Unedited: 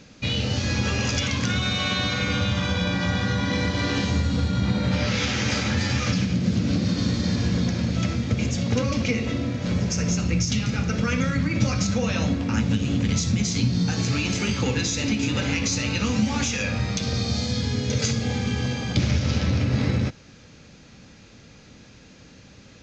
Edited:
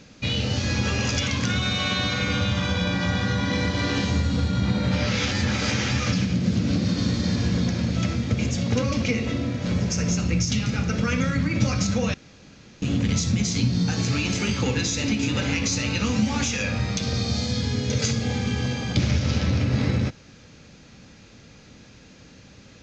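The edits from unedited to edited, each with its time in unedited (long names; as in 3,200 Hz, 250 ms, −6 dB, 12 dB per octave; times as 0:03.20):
0:05.31–0:05.91: reverse
0:12.14–0:12.82: fill with room tone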